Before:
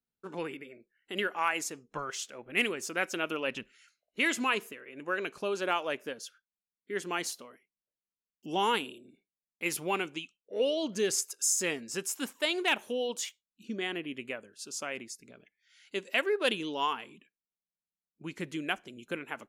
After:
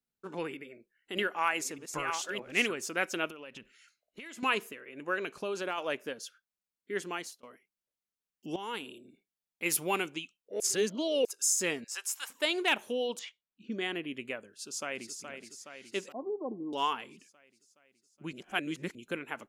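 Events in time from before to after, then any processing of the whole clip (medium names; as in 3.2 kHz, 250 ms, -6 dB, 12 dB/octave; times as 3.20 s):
0.55–2.73 s: chunks repeated in reverse 616 ms, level -6 dB
3.27–4.43 s: compression 12:1, threshold -42 dBFS
5.17–5.78 s: compression 3:1, threshold -31 dBFS
6.97–7.43 s: fade out, to -23.5 dB
8.56–8.96 s: fade in quadratic, from -14 dB
9.69–10.09 s: treble shelf 8.7 kHz +11.5 dB
10.60–11.25 s: reverse
11.84–12.30 s: high-pass 790 Hz 24 dB/octave
13.19–13.72 s: low-pass 2.9 kHz
14.46–15.20 s: echo throw 420 ms, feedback 65%, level -7.5 dB
16.12–16.73 s: rippled Chebyshev low-pass 1.1 kHz, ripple 9 dB
18.33–18.95 s: reverse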